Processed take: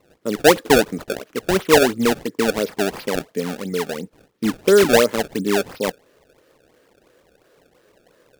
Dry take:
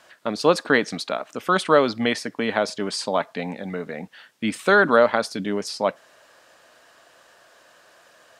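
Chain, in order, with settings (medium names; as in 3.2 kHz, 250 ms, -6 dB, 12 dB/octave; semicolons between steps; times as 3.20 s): resonant low shelf 580 Hz +8.5 dB, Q 3; decimation with a swept rate 25×, swing 160% 2.9 Hz; trim -6 dB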